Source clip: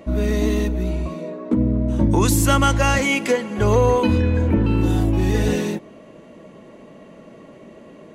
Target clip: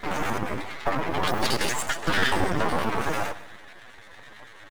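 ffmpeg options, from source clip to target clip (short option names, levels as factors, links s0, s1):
-filter_complex "[0:a]highshelf=f=3800:g=-11,bandreject=f=57.2:t=h:w=4,bandreject=f=114.4:t=h:w=4,bandreject=f=171.6:t=h:w=4,bandreject=f=228.8:t=h:w=4,bandreject=f=286:t=h:w=4,bandreject=f=343.2:t=h:w=4,bandreject=f=400.4:t=h:w=4,bandreject=f=457.6:t=h:w=4,bandreject=f=514.8:t=h:w=4,bandreject=f=572:t=h:w=4,aeval=exprs='val(0)+0.01*sin(2*PI*520*n/s)':c=same,afftfilt=real='hypot(re,im)*cos(2*PI*random(0))':imag='hypot(re,im)*sin(2*PI*random(1))':win_size=512:overlap=0.75,aresample=16000,aeval=exprs='max(val(0),0)':c=same,aresample=44100,acrossover=split=400[s0][s1];[s0]aeval=exprs='val(0)*(1-0.5/2+0.5/2*cos(2*PI*5.2*n/s))':c=same[s2];[s1]aeval=exprs='val(0)*(1-0.5/2-0.5/2*cos(2*PI*5.2*n/s))':c=same[s3];[s2][s3]amix=inputs=2:normalize=0,asetrate=85689,aresample=44100,atempo=0.514651,acrusher=bits=8:mode=log:mix=0:aa=0.000001,asplit=2[s4][s5];[s5]aecho=0:1:255|510|765:0.126|0.0516|0.0212[s6];[s4][s6]amix=inputs=2:normalize=0,asetrate=76440,aresample=44100,volume=1.88"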